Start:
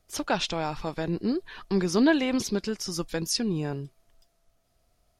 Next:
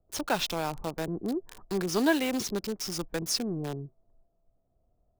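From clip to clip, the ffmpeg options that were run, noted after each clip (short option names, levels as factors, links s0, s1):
-filter_complex "[0:a]acrossover=split=300|880[s0][s1][s2];[s0]asoftclip=type=tanh:threshold=0.0251[s3];[s2]acrusher=bits=5:mix=0:aa=0.000001[s4];[s3][s1][s4]amix=inputs=3:normalize=0,volume=0.841"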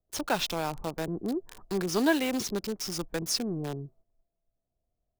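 -af "agate=range=0.282:threshold=0.00141:ratio=16:detection=peak"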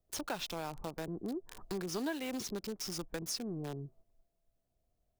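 -af "acompressor=threshold=0.00631:ratio=2.5,volume=1.33"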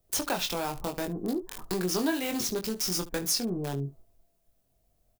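-af "highshelf=f=8700:g=8,aecho=1:1:22|72:0.562|0.15,volume=2.24"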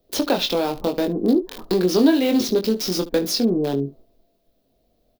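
-af "equalizer=f=125:t=o:w=1:g=-3,equalizer=f=250:t=o:w=1:g=11,equalizer=f=500:t=o:w=1:g=10,equalizer=f=4000:t=o:w=1:g=10,equalizer=f=8000:t=o:w=1:g=-8,volume=1.26"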